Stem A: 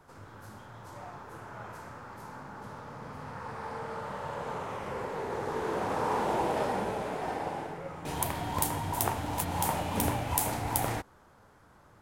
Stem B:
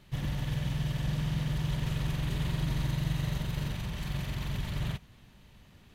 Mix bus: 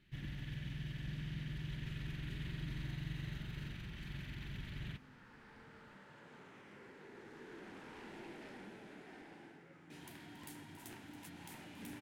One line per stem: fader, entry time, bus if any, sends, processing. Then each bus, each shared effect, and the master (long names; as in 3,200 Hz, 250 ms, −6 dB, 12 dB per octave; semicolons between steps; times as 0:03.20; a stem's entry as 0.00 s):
−11.5 dB, 1.85 s, no send, echo send −15.5 dB, high-pass filter 200 Hz 12 dB per octave; high-shelf EQ 5,700 Hz −11.5 dB; soft clipping −28 dBFS, distortion −14 dB
−6.0 dB, 0.00 s, no send, no echo send, bass and treble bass −7 dB, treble −13 dB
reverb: not used
echo: single-tap delay 278 ms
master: flat-topped bell 740 Hz −13.5 dB